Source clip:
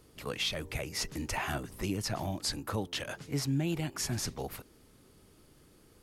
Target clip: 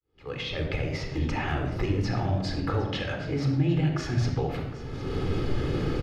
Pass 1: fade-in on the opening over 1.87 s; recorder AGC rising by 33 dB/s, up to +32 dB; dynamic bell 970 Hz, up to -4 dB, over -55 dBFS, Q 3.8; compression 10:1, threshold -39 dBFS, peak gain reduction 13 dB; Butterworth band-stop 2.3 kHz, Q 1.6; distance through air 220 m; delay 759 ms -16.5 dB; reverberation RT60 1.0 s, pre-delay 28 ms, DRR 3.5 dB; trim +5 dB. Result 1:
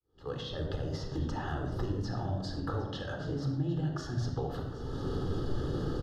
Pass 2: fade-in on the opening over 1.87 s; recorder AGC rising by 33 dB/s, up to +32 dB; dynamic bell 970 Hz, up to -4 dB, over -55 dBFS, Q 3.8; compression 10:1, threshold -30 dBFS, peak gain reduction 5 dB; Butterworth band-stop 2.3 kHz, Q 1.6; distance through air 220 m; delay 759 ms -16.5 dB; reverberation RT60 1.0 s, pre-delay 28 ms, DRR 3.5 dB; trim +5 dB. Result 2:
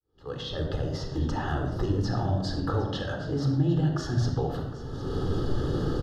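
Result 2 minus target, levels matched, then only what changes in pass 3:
2 kHz band -5.0 dB
remove: Butterworth band-stop 2.3 kHz, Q 1.6

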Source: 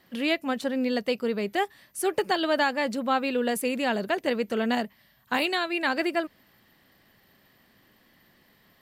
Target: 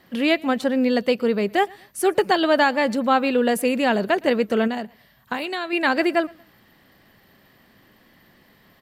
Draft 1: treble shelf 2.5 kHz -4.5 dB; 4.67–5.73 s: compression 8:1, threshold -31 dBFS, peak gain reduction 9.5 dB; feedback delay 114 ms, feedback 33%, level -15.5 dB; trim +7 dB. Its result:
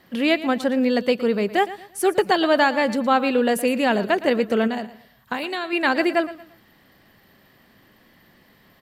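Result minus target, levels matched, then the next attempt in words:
echo-to-direct +10 dB
treble shelf 2.5 kHz -4.5 dB; 4.67–5.73 s: compression 8:1, threshold -31 dBFS, peak gain reduction 9.5 dB; feedback delay 114 ms, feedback 33%, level -25.5 dB; trim +7 dB

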